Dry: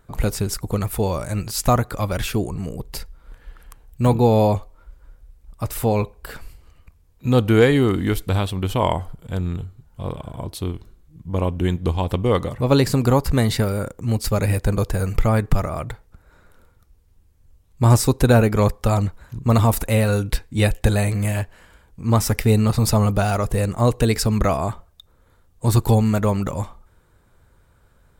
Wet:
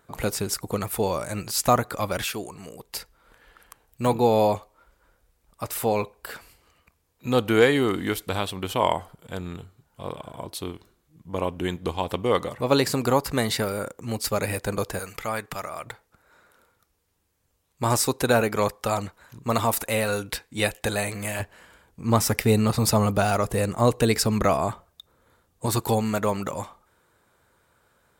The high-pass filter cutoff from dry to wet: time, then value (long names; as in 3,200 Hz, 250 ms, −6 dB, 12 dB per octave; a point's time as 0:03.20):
high-pass filter 6 dB per octave
310 Hz
from 0:02.24 1,000 Hz
from 0:02.96 440 Hz
from 0:14.99 1,400 Hz
from 0:15.86 580 Hz
from 0:21.40 200 Hz
from 0:25.66 430 Hz